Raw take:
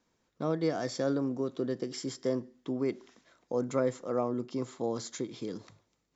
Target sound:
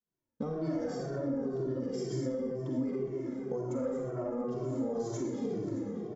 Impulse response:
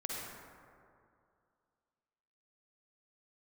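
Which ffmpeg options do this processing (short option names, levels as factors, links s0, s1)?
-filter_complex "[0:a]agate=range=0.0224:threshold=0.001:ratio=3:detection=peak[s0];[1:a]atrim=start_sample=2205,asetrate=52920,aresample=44100[s1];[s0][s1]afir=irnorm=-1:irlink=0,asplit=2[s2][s3];[s3]alimiter=level_in=1.68:limit=0.0631:level=0:latency=1,volume=0.596,volume=0.944[s4];[s2][s4]amix=inputs=2:normalize=0,asoftclip=type=tanh:threshold=0.106,equalizer=f=100:t=o:w=0.33:g=-4,equalizer=f=2500:t=o:w=0.33:g=-5,equalizer=f=4000:t=o:w=0.33:g=-5,equalizer=f=6300:t=o:w=0.33:g=4,asplit=2[s5][s6];[s6]adelay=613,lowpass=f=4900:p=1,volume=0.158,asplit=2[s7][s8];[s8]adelay=613,lowpass=f=4900:p=1,volume=0.5,asplit=2[s9][s10];[s10]adelay=613,lowpass=f=4900:p=1,volume=0.5,asplit=2[s11][s12];[s12]adelay=613,lowpass=f=4900:p=1,volume=0.5[s13];[s5][s7][s9][s11][s13]amix=inputs=5:normalize=0,acompressor=threshold=0.0178:ratio=10,tiltshelf=f=640:g=5,asplit=2[s14][s15];[s15]adelay=2.1,afreqshift=-2[s16];[s14][s16]amix=inputs=2:normalize=1,volume=1.68"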